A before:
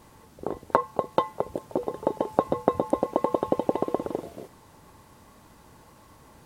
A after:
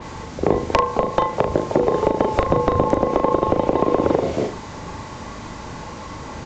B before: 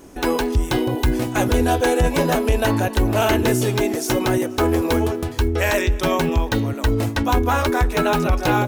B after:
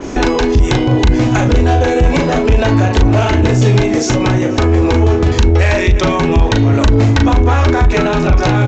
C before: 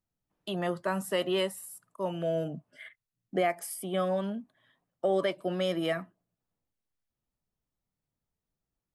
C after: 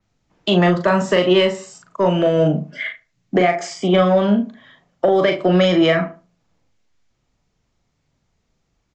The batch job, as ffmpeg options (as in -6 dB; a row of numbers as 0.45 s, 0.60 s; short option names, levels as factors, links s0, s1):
-filter_complex "[0:a]aeval=exprs='0.891*sin(PI/2*2*val(0)/0.891)':c=same,asplit=2[s0][s1];[s1]adelay=74,lowpass=f=1100:p=1,volume=0.168,asplit=2[s2][s3];[s3]adelay=74,lowpass=f=1100:p=1,volume=0.3,asplit=2[s4][s5];[s5]adelay=74,lowpass=f=1100:p=1,volume=0.3[s6];[s2][s4][s6]amix=inputs=3:normalize=0[s7];[s0][s7]amix=inputs=2:normalize=0,acompressor=threshold=0.251:ratio=6,equalizer=f=2200:t=o:w=0.25:g=3.5,acrossover=split=190[s8][s9];[s9]acompressor=threshold=0.1:ratio=10[s10];[s8][s10]amix=inputs=2:normalize=0,aresample=16000,asoftclip=type=tanh:threshold=0.224,aresample=44100,asplit=2[s11][s12];[s12]adelay=39,volume=0.531[s13];[s11][s13]amix=inputs=2:normalize=0,adynamicequalizer=threshold=0.00708:dfrequency=4800:dqfactor=0.7:tfrequency=4800:tqfactor=0.7:attack=5:release=100:ratio=0.375:range=1.5:mode=cutabove:tftype=highshelf,volume=2.66"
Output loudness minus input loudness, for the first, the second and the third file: +8.5 LU, +7.5 LU, +14.5 LU